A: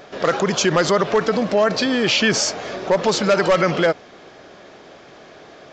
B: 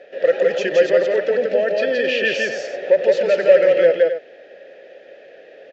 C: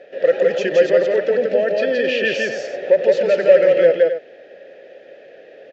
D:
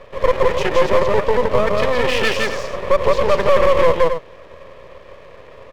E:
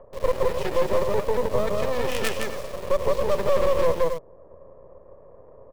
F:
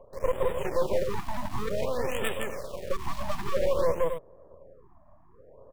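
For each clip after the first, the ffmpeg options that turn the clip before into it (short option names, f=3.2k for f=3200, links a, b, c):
-filter_complex "[0:a]asplit=3[a][b][c];[a]bandpass=f=530:t=q:w=8,volume=0dB[d];[b]bandpass=f=1.84k:t=q:w=8,volume=-6dB[e];[c]bandpass=f=2.48k:t=q:w=8,volume=-9dB[f];[d][e][f]amix=inputs=3:normalize=0,asplit=2[g][h];[h]aecho=0:1:169.1|265.3:0.794|0.282[i];[g][i]amix=inputs=2:normalize=0,volume=7.5dB"
-af "lowshelf=f=370:g=5.5,volume=-1dB"
-af "apsyclip=9dB,aeval=exprs='max(val(0),0)':c=same,volume=-3.5dB"
-filter_complex "[0:a]acrossover=split=610|940[a][b][c];[b]acompressor=mode=upward:threshold=-44dB:ratio=2.5[d];[c]acrusher=bits=3:dc=4:mix=0:aa=0.000001[e];[a][d][e]amix=inputs=3:normalize=0,volume=-7dB"
-af "afftfilt=real='re*(1-between(b*sr/1024,410*pow(5400/410,0.5+0.5*sin(2*PI*0.54*pts/sr))/1.41,410*pow(5400/410,0.5+0.5*sin(2*PI*0.54*pts/sr))*1.41))':imag='im*(1-between(b*sr/1024,410*pow(5400/410,0.5+0.5*sin(2*PI*0.54*pts/sr))/1.41,410*pow(5400/410,0.5+0.5*sin(2*PI*0.54*pts/sr))*1.41))':win_size=1024:overlap=0.75,volume=-4dB"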